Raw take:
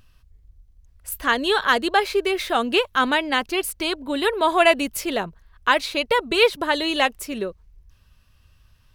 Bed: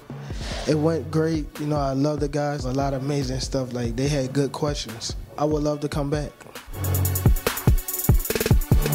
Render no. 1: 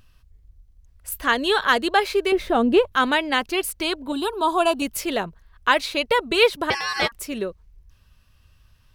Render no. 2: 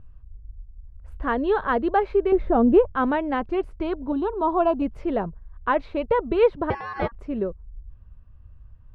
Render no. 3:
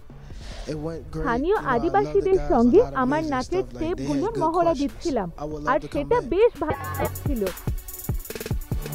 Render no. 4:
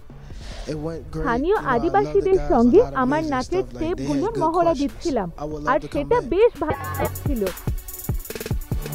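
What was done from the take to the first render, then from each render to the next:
2.32–2.92 s: tilt shelf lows +9 dB, about 830 Hz; 4.12–4.82 s: static phaser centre 530 Hz, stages 6; 6.70–7.12 s: ring modulator 1.4 kHz
low-pass 1 kHz 12 dB/octave; bass shelf 120 Hz +11.5 dB
add bed -9.5 dB
trim +2 dB

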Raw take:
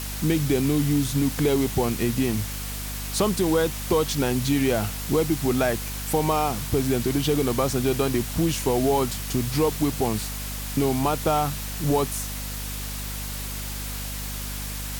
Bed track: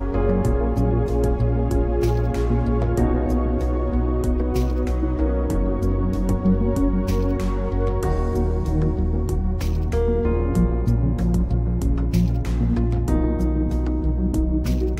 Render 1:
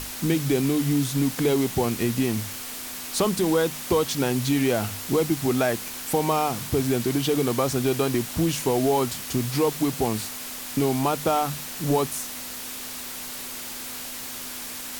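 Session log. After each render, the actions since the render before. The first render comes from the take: hum notches 50/100/150/200 Hz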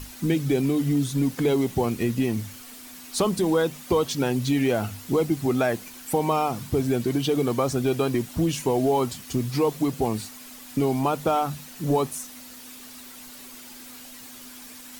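noise reduction 10 dB, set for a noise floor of -35 dBFS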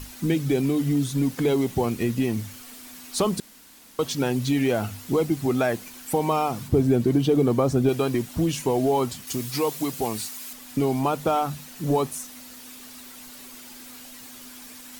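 3.40–3.99 s: room tone; 6.68–7.89 s: tilt shelf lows +5 dB, about 880 Hz; 9.27–10.53 s: tilt EQ +2 dB/octave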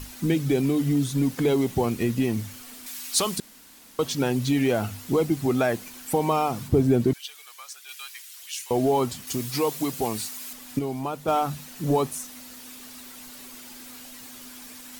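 2.86–3.38 s: tilt shelf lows -7.5 dB, about 1.2 kHz; 7.13–8.71 s: Bessel high-pass 2.4 kHz, order 4; 10.79–11.28 s: gain -6.5 dB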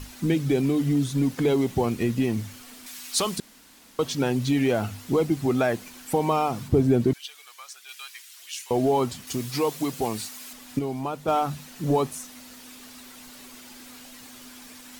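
treble shelf 9.6 kHz -7 dB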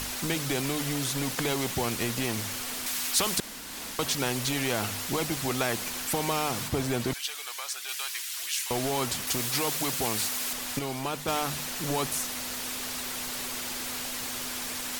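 upward compressor, threshold -43 dBFS; spectrum-flattening compressor 2:1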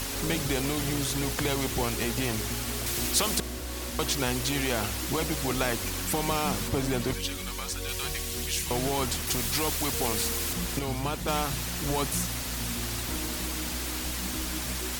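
add bed track -16 dB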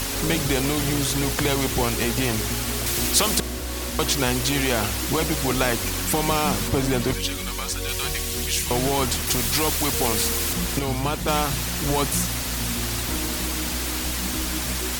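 trim +6 dB

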